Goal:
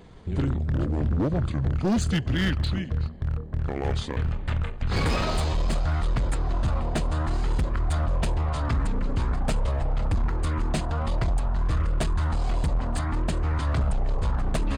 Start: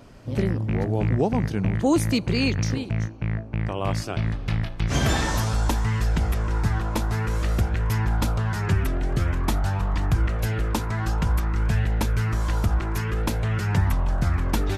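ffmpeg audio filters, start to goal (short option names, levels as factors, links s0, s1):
-af "bandreject=f=7900:w=6.3,asetrate=31183,aresample=44100,atempo=1.41421,asoftclip=type=hard:threshold=0.106"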